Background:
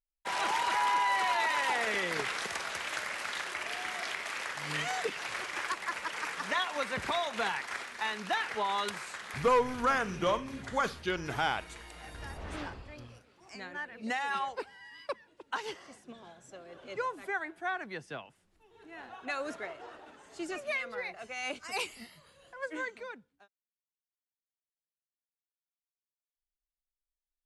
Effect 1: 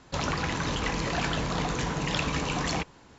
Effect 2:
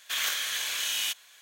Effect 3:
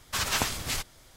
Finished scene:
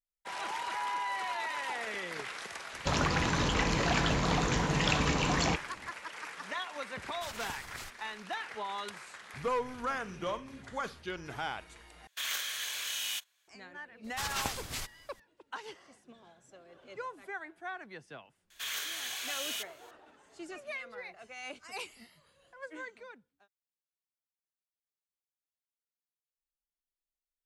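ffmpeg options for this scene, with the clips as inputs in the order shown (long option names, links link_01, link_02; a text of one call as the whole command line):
ffmpeg -i bed.wav -i cue0.wav -i cue1.wav -i cue2.wav -filter_complex "[3:a]asplit=2[link_01][link_02];[2:a]asplit=2[link_03][link_04];[0:a]volume=-6.5dB[link_05];[link_03]agate=range=-13dB:threshold=-44dB:ratio=16:release=100:detection=peak[link_06];[link_04]asoftclip=type=tanh:threshold=-22dB[link_07];[link_05]asplit=2[link_08][link_09];[link_08]atrim=end=12.074[link_10];[link_06]atrim=end=1.41,asetpts=PTS-STARTPTS,volume=-6dB[link_11];[link_09]atrim=start=13.476[link_12];[1:a]atrim=end=3.18,asetpts=PTS-STARTPTS,afade=type=in:duration=0.004:curve=hsin,afade=type=out:start_time=3.176:duration=0.004:curve=hsin,adelay=2730[link_13];[link_01]atrim=end=1.16,asetpts=PTS-STARTPTS,volume=-15.5dB,afade=type=in:duration=0.004:curve=hsin,afade=type=out:start_time=1.156:duration=0.004:curve=hsin,adelay=7080[link_14];[link_02]atrim=end=1.16,asetpts=PTS-STARTPTS,volume=-7.5dB,afade=type=in:duration=0.004:curve=hsin,afade=type=out:start_time=1.156:duration=0.004:curve=hsin,adelay=14040[link_15];[link_07]atrim=end=1.41,asetpts=PTS-STARTPTS,volume=-6.5dB,afade=type=in:duration=0.004:curve=hsin,afade=type=out:start_time=1.406:duration=0.004:curve=hsin,adelay=18500[link_16];[link_10][link_11]acrossfade=duration=0.004:curve1=hsin:curve2=hsin[link_17];[link_17][link_12]acrossfade=duration=0.004:curve1=hsin:curve2=hsin[link_18];[link_18][link_13][link_14][link_15][link_16]amix=inputs=5:normalize=0" out.wav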